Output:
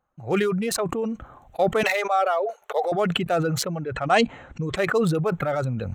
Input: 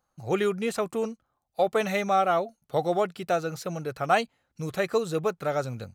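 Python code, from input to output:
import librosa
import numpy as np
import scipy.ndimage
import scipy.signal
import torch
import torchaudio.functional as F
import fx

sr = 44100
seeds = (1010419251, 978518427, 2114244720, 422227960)

y = fx.wiener(x, sr, points=9)
y = fx.brickwall_lowpass(y, sr, high_hz=9300.0, at=(3.72, 4.75), fade=0.02)
y = fx.dereverb_blind(y, sr, rt60_s=1.5)
y = fx.ellip_highpass(y, sr, hz=420.0, order=4, stop_db=40, at=(1.83, 2.92))
y = fx.sustainer(y, sr, db_per_s=21.0)
y = y * 10.0 ** (2.0 / 20.0)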